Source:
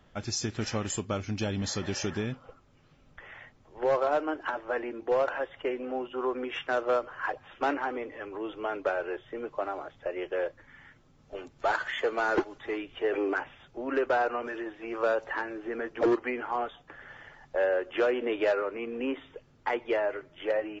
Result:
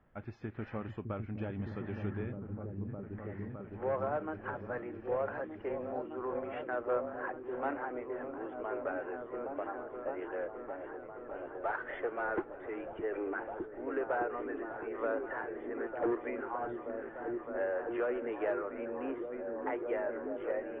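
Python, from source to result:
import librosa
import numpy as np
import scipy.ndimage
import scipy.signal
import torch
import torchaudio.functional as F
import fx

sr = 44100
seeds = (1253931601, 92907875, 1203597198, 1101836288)

y = scipy.signal.sosfilt(scipy.signal.butter(4, 2100.0, 'lowpass', fs=sr, output='sos'), x)
y = fx.echo_opening(y, sr, ms=611, hz=200, octaves=1, feedback_pct=70, wet_db=0)
y = y * librosa.db_to_amplitude(-8.0)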